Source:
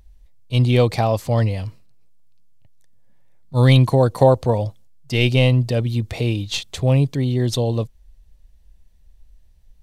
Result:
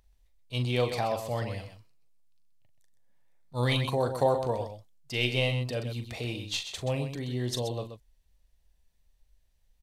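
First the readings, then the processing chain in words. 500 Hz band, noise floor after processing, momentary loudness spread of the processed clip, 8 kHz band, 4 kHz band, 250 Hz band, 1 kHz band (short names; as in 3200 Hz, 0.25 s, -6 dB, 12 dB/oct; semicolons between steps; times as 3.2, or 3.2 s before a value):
-10.5 dB, -68 dBFS, 12 LU, -6.5 dB, -6.5 dB, -14.0 dB, -8.0 dB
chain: low shelf 380 Hz -10 dB; on a send: loudspeakers at several distances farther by 14 m -9 dB, 44 m -9 dB; on the sum: gain -7.5 dB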